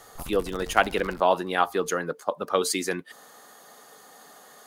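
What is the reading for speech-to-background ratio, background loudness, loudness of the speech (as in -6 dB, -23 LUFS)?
18.0 dB, -44.0 LUFS, -26.0 LUFS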